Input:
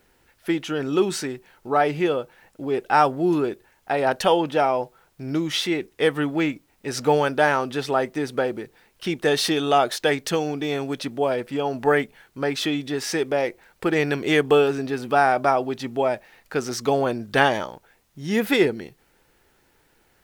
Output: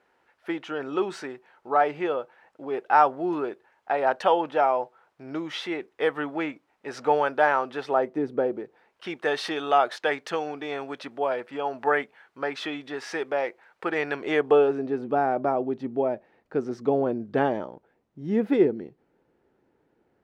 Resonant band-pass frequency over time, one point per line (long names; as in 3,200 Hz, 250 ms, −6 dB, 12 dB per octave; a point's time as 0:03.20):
resonant band-pass, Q 0.83
0:07.84 940 Hz
0:08.28 310 Hz
0:09.07 1,100 Hz
0:14.10 1,100 Hz
0:15.14 310 Hz